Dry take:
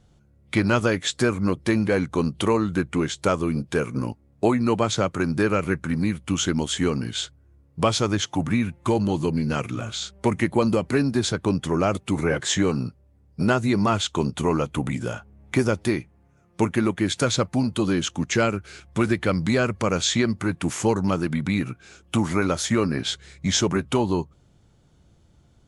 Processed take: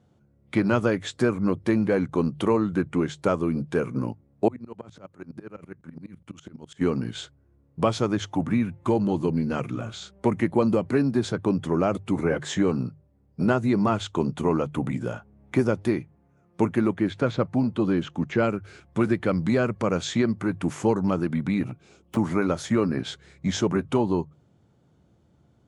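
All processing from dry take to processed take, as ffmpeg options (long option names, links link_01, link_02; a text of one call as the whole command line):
ffmpeg -i in.wav -filter_complex "[0:a]asettb=1/sr,asplit=3[link_01][link_02][link_03];[link_01]atrim=end=4.484[link_04];[link_02]atrim=start=4.48:end=6.81,asetpts=PTS-STARTPTS,afade=type=in:duration=0.004:curve=qsin,afade=type=out:start_time=2.326:duration=0.004:curve=qsin,acompressor=threshold=-32dB:ratio=3:attack=3.2:release=140:knee=1:detection=peak,aeval=exprs='val(0)*pow(10,-25*if(lt(mod(-12*n/s,1),2*abs(-12)/1000),1-mod(-12*n/s,1)/(2*abs(-12)/1000),(mod(-12*n/s,1)-2*abs(-12)/1000)/(1-2*abs(-12)/1000))/20)':channel_layout=same[link_05];[link_03]atrim=start=6.806[link_06];[link_04][link_05]acrossfade=duration=0.004:curve1=hsin:curve2=qsin[link_07];[link_07][link_06]acrossfade=duration=0.004:curve1=qsin:curve2=hsin,asettb=1/sr,asplit=3[link_08][link_09][link_10];[link_08]atrim=end=16.944[link_11];[link_09]atrim=start=16.94:end=18.44,asetpts=PTS-STARTPTS,afade=type=in:duration=0.004:curve=qsin,afade=type=out:start_time=1.496:duration=0.004:curve=qsin,acrossover=split=4100[link_12][link_13];[link_13]acompressor=threshold=-42dB:ratio=4:attack=1:release=60[link_14];[link_12][link_14]amix=inputs=2:normalize=0,highshelf=frequency=5300:gain=-5.5[link_15];[link_10]atrim=start=18.436[link_16];[link_11][link_15]acrossfade=duration=0.004:curve1=hsin:curve2=qsin[link_17];[link_17][link_16]acrossfade=duration=0.004:curve1=qsin:curve2=hsin,asettb=1/sr,asplit=3[link_18][link_19][link_20];[link_18]atrim=end=21.634[link_21];[link_19]atrim=start=21.63:end=22.17,asetpts=PTS-STARTPTS,afade=type=in:duration=0.004:curve=qsin,afade=type=out:start_time=0.536:duration=0.004:curve=qsin,equalizer=frequency=1600:width_type=o:width=0.41:gain=-12,aeval=exprs='0.0562*(abs(mod(val(0)/0.0562+3,4)-2)-1)':channel_layout=same[link_22];[link_20]atrim=start=22.166[link_23];[link_21][link_22]acrossfade=duration=0.004:curve1=hsin:curve2=qsin[link_24];[link_24][link_23]acrossfade=duration=0.004:curve1=qsin:curve2=hsin,highpass=100,highshelf=frequency=2000:gain=-11.5,bandreject=frequency=50:width_type=h:width=6,bandreject=frequency=100:width_type=h:width=6,bandreject=frequency=150:width_type=h:width=6" out.wav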